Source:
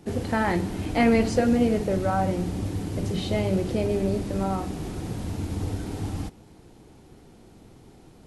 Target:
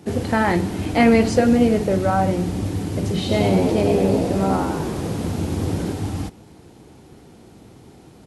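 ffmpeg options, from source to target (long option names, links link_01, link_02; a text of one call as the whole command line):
ffmpeg -i in.wav -filter_complex "[0:a]highpass=62,asplit=3[link_01][link_02][link_03];[link_01]afade=type=out:start_time=3.28:duration=0.02[link_04];[link_02]asplit=9[link_05][link_06][link_07][link_08][link_09][link_10][link_11][link_12][link_13];[link_06]adelay=92,afreqshift=71,volume=-4.5dB[link_14];[link_07]adelay=184,afreqshift=142,volume=-9.5dB[link_15];[link_08]adelay=276,afreqshift=213,volume=-14.6dB[link_16];[link_09]adelay=368,afreqshift=284,volume=-19.6dB[link_17];[link_10]adelay=460,afreqshift=355,volume=-24.6dB[link_18];[link_11]adelay=552,afreqshift=426,volume=-29.7dB[link_19];[link_12]adelay=644,afreqshift=497,volume=-34.7dB[link_20];[link_13]adelay=736,afreqshift=568,volume=-39.8dB[link_21];[link_05][link_14][link_15][link_16][link_17][link_18][link_19][link_20][link_21]amix=inputs=9:normalize=0,afade=type=in:start_time=3.28:duration=0.02,afade=type=out:start_time=5.92:duration=0.02[link_22];[link_03]afade=type=in:start_time=5.92:duration=0.02[link_23];[link_04][link_22][link_23]amix=inputs=3:normalize=0,volume=5.5dB" out.wav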